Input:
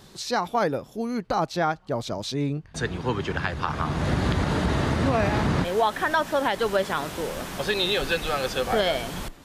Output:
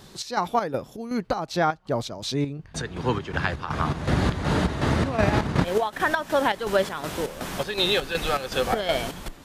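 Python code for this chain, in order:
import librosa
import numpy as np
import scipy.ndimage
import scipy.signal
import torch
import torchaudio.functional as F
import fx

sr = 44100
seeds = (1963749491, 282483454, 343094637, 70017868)

y = fx.transient(x, sr, attack_db=7, sustain_db=-7, at=(5.17, 6.0))
y = fx.chopper(y, sr, hz=2.7, depth_pct=60, duty_pct=60)
y = y * librosa.db_to_amplitude(2.0)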